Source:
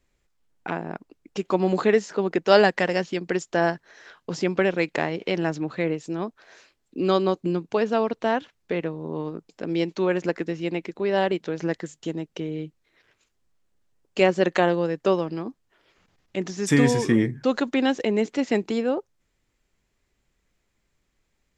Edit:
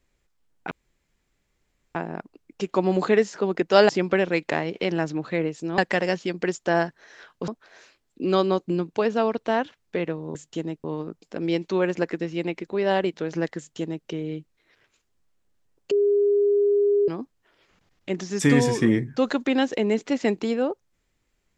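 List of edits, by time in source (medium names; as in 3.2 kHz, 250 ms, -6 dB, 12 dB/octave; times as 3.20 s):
0.71 s: insert room tone 1.24 s
2.65–4.35 s: move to 6.24 s
11.85–12.34 s: copy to 9.11 s
14.18–15.35 s: bleep 407 Hz -16.5 dBFS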